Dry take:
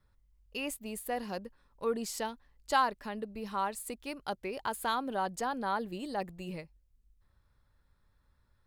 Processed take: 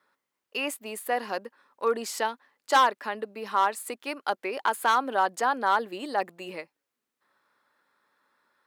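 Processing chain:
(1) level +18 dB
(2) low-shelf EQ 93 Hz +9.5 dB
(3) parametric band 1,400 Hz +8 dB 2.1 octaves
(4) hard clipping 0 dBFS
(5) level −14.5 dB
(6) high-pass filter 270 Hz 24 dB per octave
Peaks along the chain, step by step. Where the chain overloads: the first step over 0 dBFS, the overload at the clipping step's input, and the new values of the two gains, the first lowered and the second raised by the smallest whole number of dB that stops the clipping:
+2.0, +2.5, +9.0, 0.0, −14.5, −8.0 dBFS
step 1, 9.0 dB
step 1 +9 dB, step 5 −5.5 dB

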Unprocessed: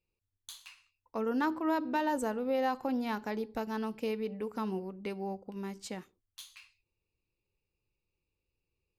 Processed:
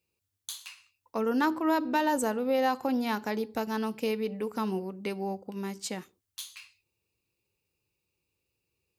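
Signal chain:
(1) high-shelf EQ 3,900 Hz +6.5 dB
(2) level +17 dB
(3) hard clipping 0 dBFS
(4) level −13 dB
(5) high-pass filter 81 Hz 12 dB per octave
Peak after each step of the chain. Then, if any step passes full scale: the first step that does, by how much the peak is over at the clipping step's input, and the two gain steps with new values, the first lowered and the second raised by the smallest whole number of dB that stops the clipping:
−19.5, −2.5, −2.5, −15.5, −15.5 dBFS
no step passes full scale

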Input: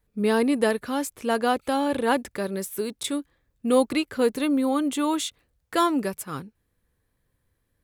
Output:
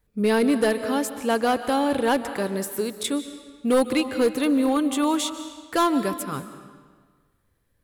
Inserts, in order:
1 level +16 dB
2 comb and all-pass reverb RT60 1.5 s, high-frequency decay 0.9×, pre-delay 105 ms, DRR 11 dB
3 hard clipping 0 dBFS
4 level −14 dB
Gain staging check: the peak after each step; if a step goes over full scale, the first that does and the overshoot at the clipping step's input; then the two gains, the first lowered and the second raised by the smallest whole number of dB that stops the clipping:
+8.0, +8.0, 0.0, −14.0 dBFS
step 1, 8.0 dB
step 1 +8 dB, step 4 −6 dB

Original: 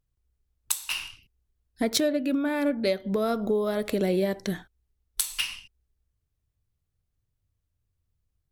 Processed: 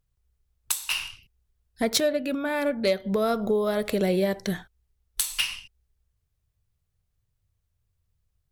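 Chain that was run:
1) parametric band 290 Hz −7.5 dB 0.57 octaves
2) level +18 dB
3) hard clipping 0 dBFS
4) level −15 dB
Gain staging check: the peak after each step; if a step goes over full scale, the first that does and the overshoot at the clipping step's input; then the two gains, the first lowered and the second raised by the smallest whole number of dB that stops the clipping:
−8.5, +9.5, 0.0, −15.0 dBFS
step 2, 9.5 dB
step 2 +8 dB, step 4 −5 dB

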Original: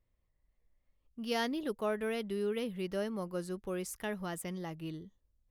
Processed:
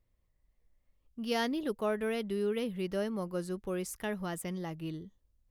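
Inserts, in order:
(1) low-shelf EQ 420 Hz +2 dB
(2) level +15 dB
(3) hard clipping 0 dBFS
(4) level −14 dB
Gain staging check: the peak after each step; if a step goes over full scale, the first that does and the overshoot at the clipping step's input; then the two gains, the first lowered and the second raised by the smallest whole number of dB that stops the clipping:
−21.0, −6.0, −6.0, −20.0 dBFS
no step passes full scale

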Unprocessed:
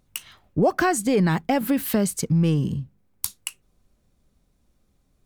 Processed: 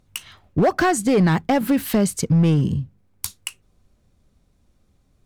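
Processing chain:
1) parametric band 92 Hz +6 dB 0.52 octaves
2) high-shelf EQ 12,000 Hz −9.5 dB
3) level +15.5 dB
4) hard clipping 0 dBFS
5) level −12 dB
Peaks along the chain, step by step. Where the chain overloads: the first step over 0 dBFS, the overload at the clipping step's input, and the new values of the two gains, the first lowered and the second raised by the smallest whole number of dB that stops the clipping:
−7.0, −9.0, +6.5, 0.0, −12.0 dBFS
step 3, 6.5 dB
step 3 +8.5 dB, step 5 −5 dB

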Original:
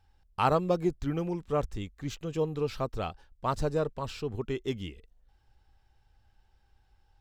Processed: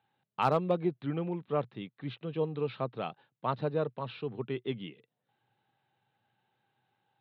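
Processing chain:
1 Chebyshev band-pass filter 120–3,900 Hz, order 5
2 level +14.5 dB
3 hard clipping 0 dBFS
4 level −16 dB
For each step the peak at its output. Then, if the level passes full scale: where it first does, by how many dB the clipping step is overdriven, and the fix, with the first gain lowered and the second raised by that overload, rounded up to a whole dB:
−11.0, +3.5, 0.0, −16.0 dBFS
step 2, 3.5 dB
step 2 +10.5 dB, step 4 −12 dB

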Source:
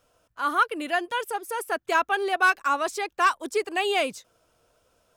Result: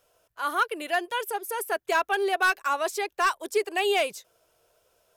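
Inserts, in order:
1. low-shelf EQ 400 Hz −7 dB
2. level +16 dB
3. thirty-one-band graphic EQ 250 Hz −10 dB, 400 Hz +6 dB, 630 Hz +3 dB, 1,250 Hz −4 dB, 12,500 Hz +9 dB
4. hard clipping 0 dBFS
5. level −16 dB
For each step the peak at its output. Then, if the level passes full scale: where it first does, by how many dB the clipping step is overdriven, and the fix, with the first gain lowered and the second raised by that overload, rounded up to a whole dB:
−10.5, +5.5, +5.0, 0.0, −16.0 dBFS
step 2, 5.0 dB
step 2 +11 dB, step 5 −11 dB

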